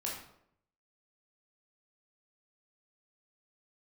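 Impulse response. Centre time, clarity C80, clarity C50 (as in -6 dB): 43 ms, 7.0 dB, 3.0 dB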